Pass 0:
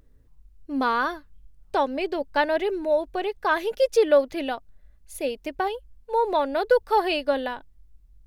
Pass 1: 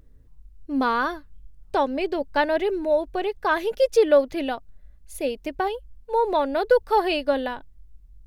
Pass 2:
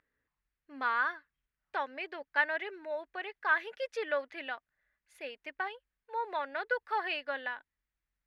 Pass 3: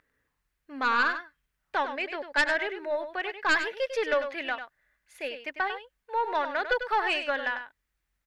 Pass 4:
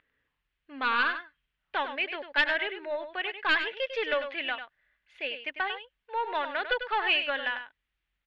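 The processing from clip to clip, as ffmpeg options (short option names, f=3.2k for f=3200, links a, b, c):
-af "lowshelf=f=300:g=5"
-af "bandpass=f=1.8k:t=q:w=2.4:csg=0"
-af "aeval=exprs='0.168*(cos(1*acos(clip(val(0)/0.168,-1,1)))-cos(1*PI/2))+0.0841*(cos(2*acos(clip(val(0)/0.168,-1,1)))-cos(2*PI/2))+0.0473*(cos(5*acos(clip(val(0)/0.168,-1,1)))-cos(5*PI/2))':c=same,aecho=1:1:98:0.335"
-af "lowpass=f=3.1k:t=q:w=2.8,volume=-3.5dB"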